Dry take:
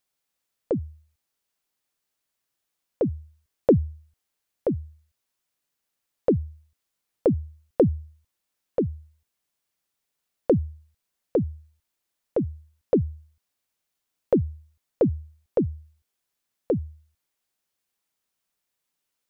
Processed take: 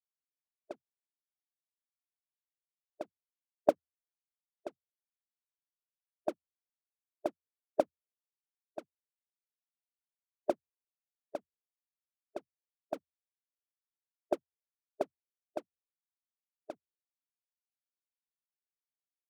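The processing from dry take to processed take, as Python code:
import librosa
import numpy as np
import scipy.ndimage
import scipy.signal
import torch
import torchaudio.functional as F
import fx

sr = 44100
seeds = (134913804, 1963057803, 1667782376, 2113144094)

p1 = fx.ladder_bandpass(x, sr, hz=490.0, resonance_pct=45)
p2 = np.sign(p1) * np.maximum(np.abs(p1) - 10.0 ** (-44.5 / 20.0), 0.0)
p3 = p1 + (p2 * librosa.db_to_amplitude(-4.5))
p4 = fx.spec_gate(p3, sr, threshold_db=-10, keep='weak')
p5 = fx.upward_expand(p4, sr, threshold_db=-49.0, expansion=2.5)
y = p5 * librosa.db_to_amplitude(13.5)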